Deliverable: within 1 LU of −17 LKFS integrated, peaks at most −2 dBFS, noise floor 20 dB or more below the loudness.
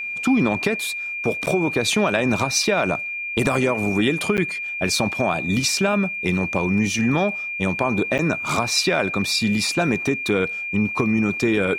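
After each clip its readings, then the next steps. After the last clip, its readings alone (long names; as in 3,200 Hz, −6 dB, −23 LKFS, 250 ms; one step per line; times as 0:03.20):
number of dropouts 3; longest dropout 8.8 ms; interfering tone 2,400 Hz; level of the tone −26 dBFS; integrated loudness −21.0 LKFS; sample peak −4.0 dBFS; target loudness −17.0 LKFS
→ repair the gap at 0:01.46/0:04.37/0:08.18, 8.8 ms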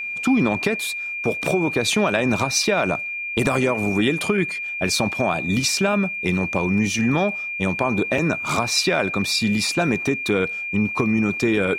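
number of dropouts 0; interfering tone 2,400 Hz; level of the tone −26 dBFS
→ notch filter 2,400 Hz, Q 30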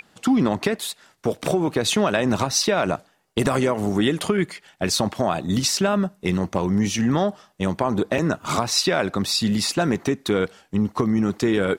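interfering tone none found; integrated loudness −22.5 LKFS; sample peak −5.0 dBFS; target loudness −17.0 LKFS
→ level +5.5 dB
brickwall limiter −2 dBFS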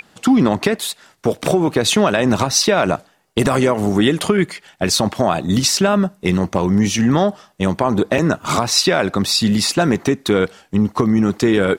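integrated loudness −17.0 LKFS; sample peak −2.0 dBFS; background noise floor −56 dBFS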